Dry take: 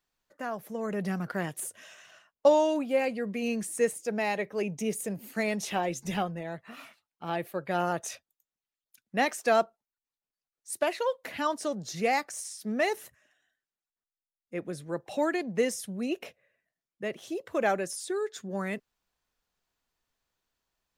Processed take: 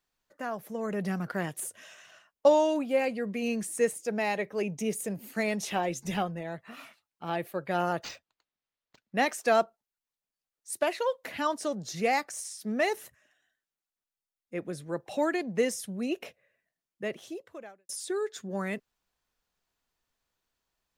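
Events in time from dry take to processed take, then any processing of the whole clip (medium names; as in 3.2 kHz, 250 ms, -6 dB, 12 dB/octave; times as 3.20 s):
8.03–9.16 s: decimation joined by straight lines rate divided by 4×
17.16–17.89 s: fade out quadratic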